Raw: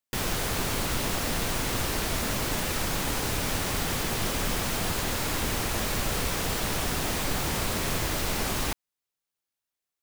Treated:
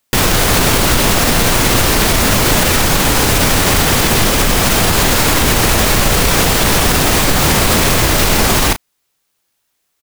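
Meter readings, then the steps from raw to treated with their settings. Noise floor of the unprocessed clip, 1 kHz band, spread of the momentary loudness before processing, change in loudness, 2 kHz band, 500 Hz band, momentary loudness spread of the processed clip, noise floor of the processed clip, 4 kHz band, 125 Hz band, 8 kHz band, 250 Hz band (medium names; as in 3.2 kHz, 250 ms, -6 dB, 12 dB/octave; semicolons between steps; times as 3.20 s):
under -85 dBFS, +17.0 dB, 0 LU, +17.0 dB, +17.0 dB, +17.0 dB, 1 LU, -68 dBFS, +17.0 dB, +16.5 dB, +17.0 dB, +16.5 dB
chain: doubling 34 ms -11.5 dB; loudness maximiser +21 dB; trim -1 dB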